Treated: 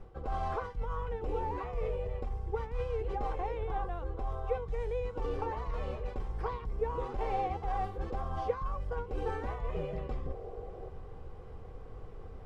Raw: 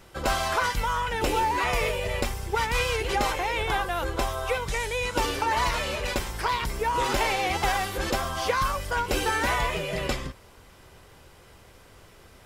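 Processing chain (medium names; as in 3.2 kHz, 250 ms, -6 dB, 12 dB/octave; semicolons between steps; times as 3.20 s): tilt EQ -4 dB/octave; time-frequency box 10.27–10.88 s, 340–810 Hz +10 dB; treble shelf 9.7 kHz -9.5 dB; reverse; compression 6:1, threshold -26 dBFS, peak gain reduction 19 dB; reverse; small resonant body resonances 470/770/1100 Hz, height 12 dB, ringing for 35 ms; trim -8 dB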